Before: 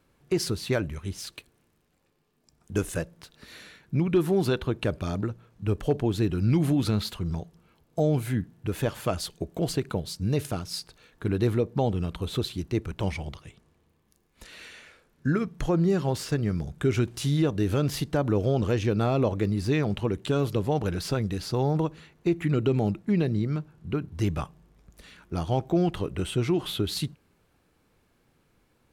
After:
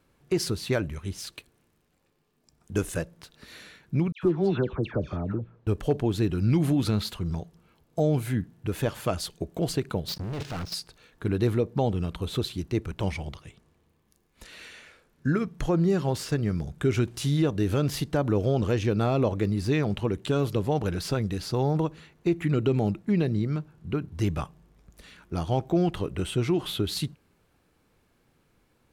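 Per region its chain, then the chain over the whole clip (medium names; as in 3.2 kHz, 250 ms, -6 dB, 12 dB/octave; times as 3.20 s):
4.12–5.67 s: tape spacing loss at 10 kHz 24 dB + phase dispersion lows, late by 113 ms, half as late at 1.7 kHz
10.08–10.74 s: low-pass 5.2 kHz 24 dB/octave + level held to a coarse grid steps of 20 dB + waveshaping leveller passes 5
whole clip: none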